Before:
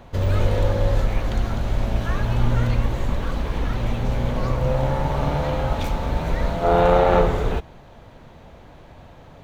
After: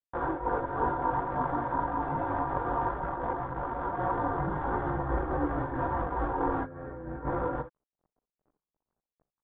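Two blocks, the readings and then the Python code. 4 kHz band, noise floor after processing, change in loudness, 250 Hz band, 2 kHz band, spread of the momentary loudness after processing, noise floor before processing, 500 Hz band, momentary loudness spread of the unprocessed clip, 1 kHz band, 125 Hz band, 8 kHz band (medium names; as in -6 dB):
under -25 dB, under -85 dBFS, -9.0 dB, -6.5 dB, -7.0 dB, 5 LU, -46 dBFS, -11.0 dB, 9 LU, -3.0 dB, -15.5 dB, no reading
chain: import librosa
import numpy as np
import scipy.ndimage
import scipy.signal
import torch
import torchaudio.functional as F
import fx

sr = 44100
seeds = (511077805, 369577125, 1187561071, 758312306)

y = fx.rattle_buzz(x, sr, strikes_db=-29.0, level_db=-12.0)
y = fx.low_shelf(y, sr, hz=340.0, db=-5.5)
y = y + 0.81 * np.pad(y, (int(4.7 * sr / 1000.0), 0))[:len(y)]
y = np.sign(y) * np.maximum(np.abs(y) - 10.0 ** (-36.5 / 20.0), 0.0)
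y = fx.low_shelf(y, sr, hz=110.0, db=-10.5)
y = fx.room_early_taps(y, sr, ms=(38, 55, 66), db=(-17.0, -18.0, -18.0))
y = y * np.sin(2.0 * np.pi * 950.0 * np.arange(len(y)) / sr)
y = fx.over_compress(y, sr, threshold_db=-27.0, ratio=-0.5)
y = fx.chorus_voices(y, sr, voices=6, hz=0.52, base_ms=18, depth_ms=3.9, mix_pct=55)
y = scipy.signal.sosfilt(scipy.signal.butter(4, 1000.0, 'lowpass', fs=sr, output='sos'), y)
y = fx.am_noise(y, sr, seeds[0], hz=5.7, depth_pct=65)
y = y * 10.0 ** (8.0 / 20.0)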